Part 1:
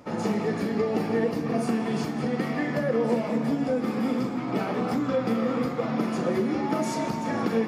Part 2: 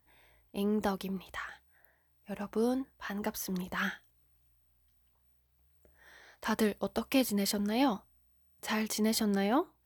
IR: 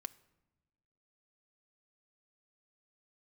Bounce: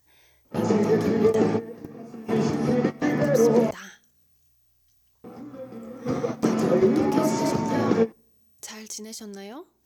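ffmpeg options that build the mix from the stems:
-filter_complex "[0:a]aemphasis=mode=reproduction:type=75kf,adelay=450,volume=2dB,asplit=3[link_01][link_02][link_03];[link_01]atrim=end=3.71,asetpts=PTS-STARTPTS,afade=type=out:start_time=3.706:duration=0.004:curve=hsin[link_04];[link_02]atrim=start=3.71:end=5.24,asetpts=PTS-STARTPTS,volume=0[link_05];[link_03]atrim=start=5.24,asetpts=PTS-STARTPTS,afade=type=in:duration=0.004:curve=hsin[link_06];[link_04][link_05][link_06]concat=n=3:v=0:a=1,asplit=2[link_07][link_08];[link_08]volume=-20dB[link_09];[1:a]highshelf=frequency=3000:gain=9.5,alimiter=limit=-22.5dB:level=0:latency=1:release=64,acompressor=threshold=-44dB:ratio=2.5,volume=-3dB,asplit=3[link_10][link_11][link_12];[link_11]volume=-4dB[link_13];[link_12]apad=whole_len=358516[link_14];[link_07][link_14]sidechaingate=range=-26dB:threshold=-55dB:ratio=16:detection=peak[link_15];[2:a]atrim=start_sample=2205[link_16];[link_09][link_13]amix=inputs=2:normalize=0[link_17];[link_17][link_16]afir=irnorm=-1:irlink=0[link_18];[link_15][link_10][link_18]amix=inputs=3:normalize=0,equalizer=frequency=100:width_type=o:width=0.67:gain=7,equalizer=frequency=400:width_type=o:width=0.67:gain=6,equalizer=frequency=6300:width_type=o:width=0.67:gain=12,equalizer=frequency=16000:width_type=o:width=0.67:gain=-4"

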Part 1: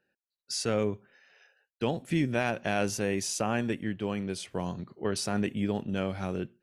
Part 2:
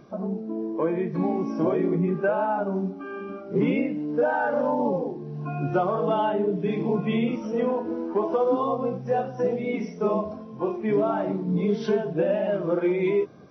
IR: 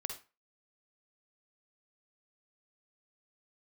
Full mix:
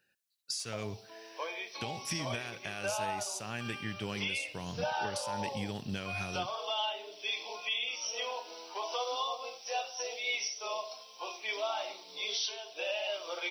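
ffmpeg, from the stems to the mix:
-filter_complex "[0:a]tiltshelf=frequency=1400:gain=-9,acompressor=threshold=-35dB:ratio=12,volume=0dB,asplit=2[link_01][link_02];[link_02]volume=-14.5dB[link_03];[1:a]highpass=frequency=670:width=0.5412,highpass=frequency=670:width=1.3066,aexciter=amount=15.3:drive=5.3:freq=2600,adelay=600,volume=-6dB[link_04];[2:a]atrim=start_sample=2205[link_05];[link_03][link_05]afir=irnorm=-1:irlink=0[link_06];[link_01][link_04][link_06]amix=inputs=3:normalize=0,equalizer=frequency=110:width=1.1:gain=9,alimiter=limit=-24dB:level=0:latency=1:release=433"

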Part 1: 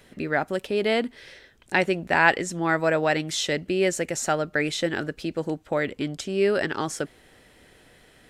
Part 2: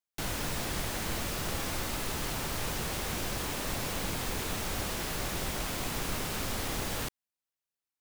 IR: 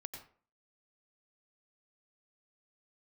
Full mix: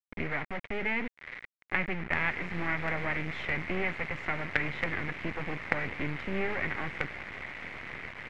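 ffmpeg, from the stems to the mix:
-filter_complex "[0:a]bass=frequency=250:gain=3,treble=frequency=4000:gain=-9,acrossover=split=200[link_01][link_02];[link_02]acompressor=threshold=-40dB:ratio=2.5[link_03];[link_01][link_03]amix=inputs=2:normalize=0,volume=2dB,asplit=3[link_04][link_05][link_06];[link_05]volume=-17.5dB[link_07];[1:a]adelay=1950,volume=-8dB,asplit=2[link_08][link_09];[link_09]volume=-7.5dB[link_10];[link_06]apad=whole_len=438988[link_11];[link_08][link_11]sidechaingate=range=-33dB:threshold=-52dB:ratio=16:detection=peak[link_12];[2:a]atrim=start_sample=2205[link_13];[link_07][link_10]amix=inputs=2:normalize=0[link_14];[link_14][link_13]afir=irnorm=-1:irlink=0[link_15];[link_04][link_12][link_15]amix=inputs=3:normalize=0,highpass=frequency=57:width=0.5412,highpass=frequency=57:width=1.3066,acrusher=bits=4:dc=4:mix=0:aa=0.000001,lowpass=frequency=2100:width_type=q:width=5.5"

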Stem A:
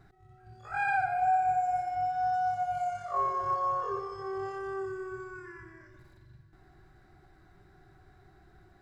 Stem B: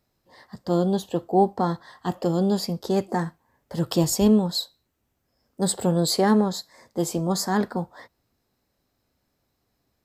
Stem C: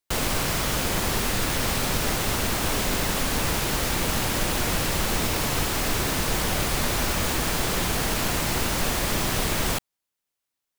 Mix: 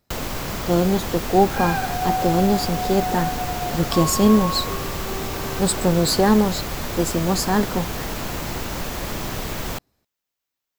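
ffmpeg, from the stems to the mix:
ffmpeg -i stem1.wav -i stem2.wav -i stem3.wav -filter_complex "[0:a]adelay=800,volume=2dB[link_01];[1:a]volume=3dB[link_02];[2:a]equalizer=frequency=9500:width=3.9:gain=-11,acrossover=split=1300|7000[link_03][link_04][link_05];[link_03]acompressor=threshold=-26dB:ratio=4[link_06];[link_04]acompressor=threshold=-37dB:ratio=4[link_07];[link_05]acompressor=threshold=-36dB:ratio=4[link_08];[link_06][link_07][link_08]amix=inputs=3:normalize=0,volume=1dB[link_09];[link_01][link_02][link_09]amix=inputs=3:normalize=0" out.wav

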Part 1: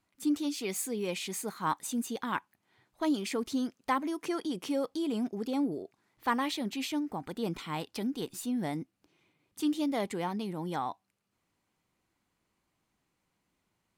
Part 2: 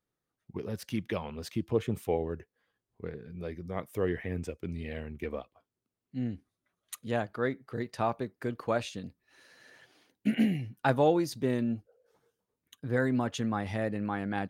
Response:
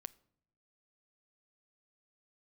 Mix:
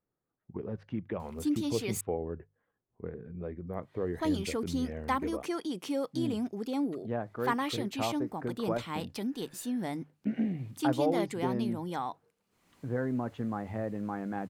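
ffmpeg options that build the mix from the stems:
-filter_complex "[0:a]acompressor=mode=upward:threshold=-48dB:ratio=2.5,adelay=1200,volume=-1dB,asplit=3[link_01][link_02][link_03];[link_01]atrim=end=2.01,asetpts=PTS-STARTPTS,afade=type=out:start_time=2.006:duration=0.004:curve=hsin[link_04];[link_02]atrim=start=2.01:end=3.73,asetpts=PTS-STARTPTS,volume=0[link_05];[link_03]atrim=start=3.73,asetpts=PTS-STARTPTS,afade=type=in:duration=0.004:curve=hsin[link_06];[link_04][link_05][link_06]concat=n=3:v=0:a=1[link_07];[1:a]lowpass=1300,acompressor=threshold=-37dB:ratio=1.5,volume=1dB[link_08];[link_07][link_08]amix=inputs=2:normalize=0,bandreject=frequency=50:width_type=h:width=6,bandreject=frequency=100:width_type=h:width=6,bandreject=frequency=150:width_type=h:width=6"

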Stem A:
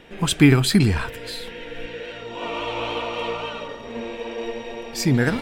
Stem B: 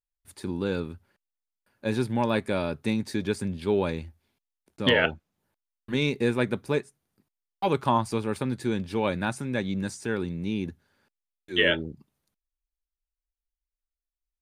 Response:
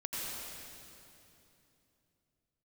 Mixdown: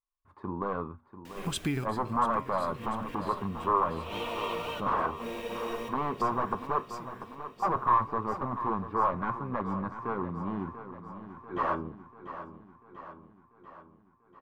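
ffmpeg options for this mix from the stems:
-filter_complex "[0:a]acompressor=threshold=-27dB:ratio=3,acrusher=bits=7:mix=0:aa=0.000001,adelay=1250,volume=-5dB,asplit=2[link_01][link_02];[link_02]volume=-17dB[link_03];[1:a]aeval=exprs='0.0708*(abs(mod(val(0)/0.0708+3,4)-2)-1)':channel_layout=same,flanger=delay=9.2:depth=2.7:regen=-77:speed=0.22:shape=sinusoidal,lowpass=frequency=1100:width_type=q:width=10,volume=-0.5dB,asplit=3[link_04][link_05][link_06];[link_05]volume=-12dB[link_07];[link_06]apad=whole_len=294112[link_08];[link_01][link_08]sidechaincompress=threshold=-52dB:ratio=4:attack=24:release=106[link_09];[link_03][link_07]amix=inputs=2:normalize=0,aecho=0:1:691|1382|2073|2764|3455|4146|4837|5528|6219:1|0.58|0.336|0.195|0.113|0.0656|0.0381|0.0221|0.0128[link_10];[link_09][link_04][link_10]amix=inputs=3:normalize=0"

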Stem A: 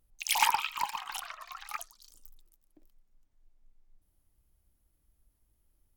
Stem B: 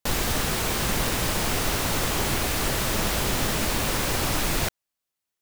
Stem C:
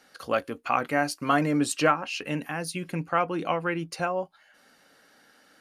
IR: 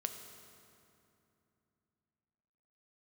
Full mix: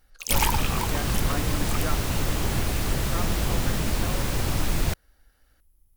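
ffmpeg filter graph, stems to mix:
-filter_complex "[0:a]lowshelf=frequency=130:gain=11,crystalizer=i=1:c=0,volume=-1dB[link_01];[1:a]lowshelf=frequency=220:gain=11,adelay=250,volume=-5.5dB[link_02];[2:a]volume=-11.5dB[link_03];[link_01][link_02][link_03]amix=inputs=3:normalize=0"

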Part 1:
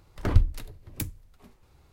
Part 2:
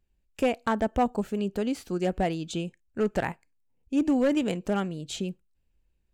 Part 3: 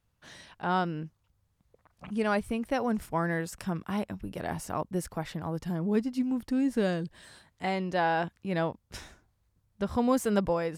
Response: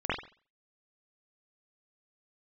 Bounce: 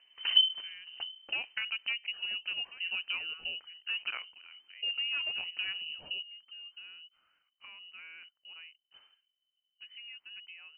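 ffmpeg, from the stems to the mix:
-filter_complex "[0:a]volume=-6dB[link_01];[1:a]acompressor=threshold=-30dB:ratio=2.5,adelay=900,volume=-4.5dB[link_02];[2:a]lowshelf=frequency=180:gain=8,acompressor=threshold=-31dB:ratio=2,volume=-19dB[link_03];[link_01][link_02][link_03]amix=inputs=3:normalize=0,lowpass=frequency=2600:width_type=q:width=0.5098,lowpass=frequency=2600:width_type=q:width=0.6013,lowpass=frequency=2600:width_type=q:width=0.9,lowpass=frequency=2600:width_type=q:width=2.563,afreqshift=-3100"

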